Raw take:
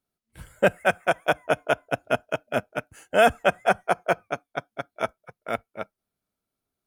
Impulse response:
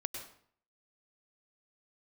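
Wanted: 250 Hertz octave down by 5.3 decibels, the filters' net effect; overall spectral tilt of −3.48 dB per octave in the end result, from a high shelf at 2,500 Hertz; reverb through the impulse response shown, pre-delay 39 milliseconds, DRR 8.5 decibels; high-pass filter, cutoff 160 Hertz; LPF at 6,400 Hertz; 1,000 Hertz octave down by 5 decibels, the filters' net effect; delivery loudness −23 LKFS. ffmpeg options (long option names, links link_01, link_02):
-filter_complex "[0:a]highpass=160,lowpass=6400,equalizer=frequency=250:width_type=o:gain=-5.5,equalizer=frequency=1000:width_type=o:gain=-9,highshelf=frequency=2500:gain=4.5,asplit=2[link_01][link_02];[1:a]atrim=start_sample=2205,adelay=39[link_03];[link_02][link_03]afir=irnorm=-1:irlink=0,volume=-9dB[link_04];[link_01][link_04]amix=inputs=2:normalize=0,volume=5dB"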